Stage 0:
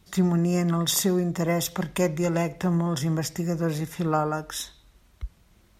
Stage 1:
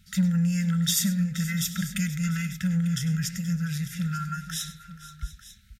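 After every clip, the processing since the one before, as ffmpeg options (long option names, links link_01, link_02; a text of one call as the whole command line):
ffmpeg -i in.wav -filter_complex "[0:a]afftfilt=real='re*(1-between(b*sr/4096,230,1300))':imag='im*(1-between(b*sr/4096,230,1300))':win_size=4096:overlap=0.75,asplit=2[link_01][link_02];[link_02]asoftclip=type=tanh:threshold=-26dB,volume=-10.5dB[link_03];[link_01][link_03]amix=inputs=2:normalize=0,aecho=1:1:100|477|696|895:0.178|0.15|0.119|0.158,volume=-1.5dB" out.wav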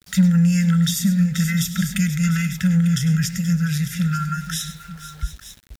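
ffmpeg -i in.wav -filter_complex "[0:a]acrossover=split=330[link_01][link_02];[link_02]acompressor=threshold=-32dB:ratio=4[link_03];[link_01][link_03]amix=inputs=2:normalize=0,aeval=exprs='val(0)*gte(abs(val(0)),0.00266)':channel_layout=same,volume=8dB" out.wav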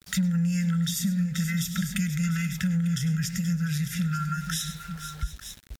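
ffmpeg -i in.wav -af "acompressor=threshold=-27dB:ratio=2.5" -ar 48000 -c:a libmp3lame -b:a 192k out.mp3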